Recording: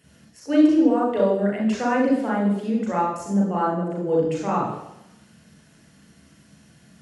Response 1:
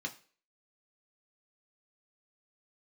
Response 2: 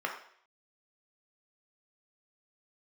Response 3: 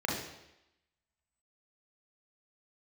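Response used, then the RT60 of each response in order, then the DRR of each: 3; no single decay rate, 0.60 s, 0.90 s; 1.5 dB, 0.5 dB, -3.0 dB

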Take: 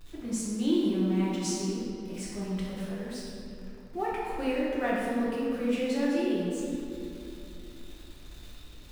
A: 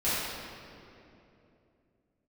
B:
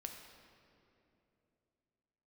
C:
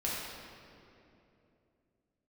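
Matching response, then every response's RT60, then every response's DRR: C; 2.9 s, 2.9 s, 2.9 s; -13.5 dB, 3.0 dB, -7.0 dB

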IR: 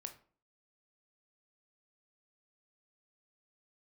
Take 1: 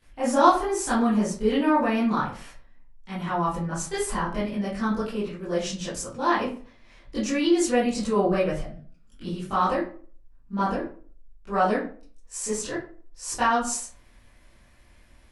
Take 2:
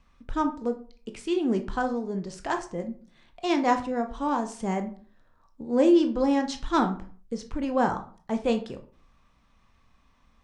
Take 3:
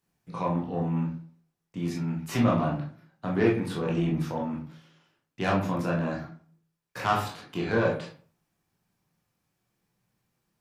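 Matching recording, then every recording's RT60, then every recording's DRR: 2; 0.45 s, 0.45 s, 0.45 s; -13.0 dB, 6.0 dB, -3.5 dB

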